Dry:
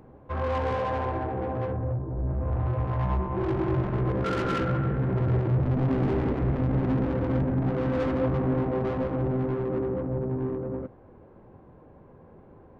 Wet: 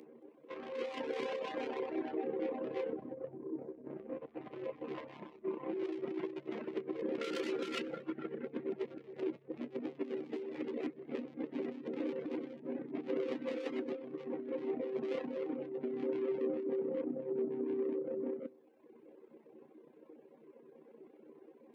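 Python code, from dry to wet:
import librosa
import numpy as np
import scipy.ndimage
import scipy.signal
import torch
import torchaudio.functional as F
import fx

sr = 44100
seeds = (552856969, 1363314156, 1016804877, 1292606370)

p1 = fx.stretch_grains(x, sr, factor=1.7, grain_ms=63.0)
p2 = p1 + fx.echo_single(p1, sr, ms=225, db=-16.5, dry=0)
p3 = 10.0 ** (-17.0 / 20.0) * np.tanh(p2 / 10.0 ** (-17.0 / 20.0))
p4 = fx.dereverb_blind(p3, sr, rt60_s=1.2)
p5 = fx.over_compress(p4, sr, threshold_db=-33.0, ratio=-0.5)
p6 = scipy.signal.sosfilt(scipy.signal.butter(4, 280.0, 'highpass', fs=sr, output='sos'), p5)
y = fx.band_shelf(p6, sr, hz=1000.0, db=-12.0, octaves=1.7)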